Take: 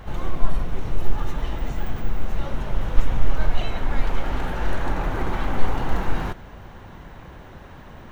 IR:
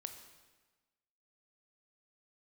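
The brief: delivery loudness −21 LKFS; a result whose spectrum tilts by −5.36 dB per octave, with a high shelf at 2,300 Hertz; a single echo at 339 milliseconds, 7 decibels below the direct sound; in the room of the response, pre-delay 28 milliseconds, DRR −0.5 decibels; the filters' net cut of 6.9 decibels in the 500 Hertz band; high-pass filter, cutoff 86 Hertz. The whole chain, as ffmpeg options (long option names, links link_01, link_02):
-filter_complex "[0:a]highpass=86,equalizer=frequency=500:width_type=o:gain=-9,highshelf=frequency=2300:gain=-6,aecho=1:1:339:0.447,asplit=2[link_01][link_02];[1:a]atrim=start_sample=2205,adelay=28[link_03];[link_02][link_03]afir=irnorm=-1:irlink=0,volume=4dB[link_04];[link_01][link_04]amix=inputs=2:normalize=0,volume=9.5dB"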